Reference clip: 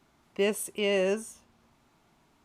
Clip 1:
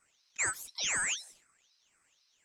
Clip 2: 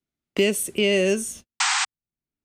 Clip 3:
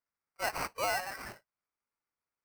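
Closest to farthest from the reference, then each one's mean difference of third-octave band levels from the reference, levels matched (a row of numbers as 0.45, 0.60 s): 2, 1, 3; 4.0, 10.0, 13.5 dB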